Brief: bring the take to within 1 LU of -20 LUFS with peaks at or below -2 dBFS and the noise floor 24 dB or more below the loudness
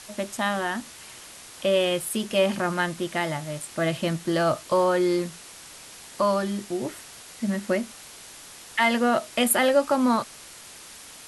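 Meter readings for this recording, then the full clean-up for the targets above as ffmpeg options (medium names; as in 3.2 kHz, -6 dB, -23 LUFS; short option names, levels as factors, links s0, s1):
noise floor -45 dBFS; noise floor target -49 dBFS; loudness -25.0 LUFS; peak level -9.0 dBFS; loudness target -20.0 LUFS
-> -af "afftdn=nr=6:nf=-45"
-af "volume=1.78"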